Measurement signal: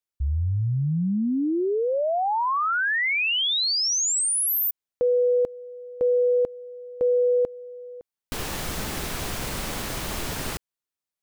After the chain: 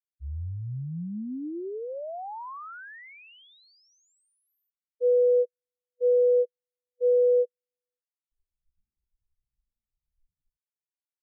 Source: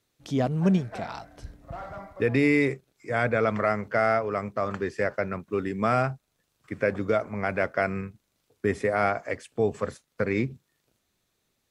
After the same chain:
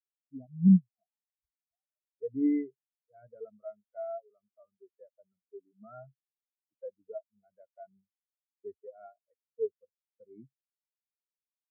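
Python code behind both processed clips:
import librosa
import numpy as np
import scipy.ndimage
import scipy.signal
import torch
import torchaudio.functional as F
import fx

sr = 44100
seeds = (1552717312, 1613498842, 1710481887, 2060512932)

y = fx.spectral_expand(x, sr, expansion=4.0)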